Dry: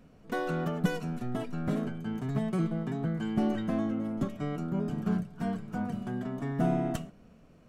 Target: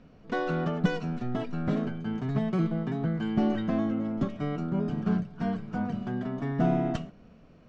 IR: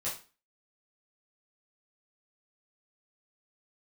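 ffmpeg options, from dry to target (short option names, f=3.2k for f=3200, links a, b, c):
-af "lowpass=f=5.6k:w=0.5412,lowpass=f=5.6k:w=1.3066,volume=2.5dB"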